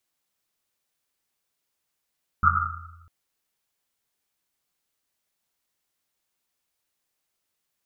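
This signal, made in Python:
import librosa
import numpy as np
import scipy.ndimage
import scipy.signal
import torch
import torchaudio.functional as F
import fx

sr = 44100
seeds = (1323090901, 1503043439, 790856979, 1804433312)

y = fx.risset_drum(sr, seeds[0], length_s=0.65, hz=84.0, decay_s=1.48, noise_hz=1300.0, noise_width_hz=200.0, noise_pct=75)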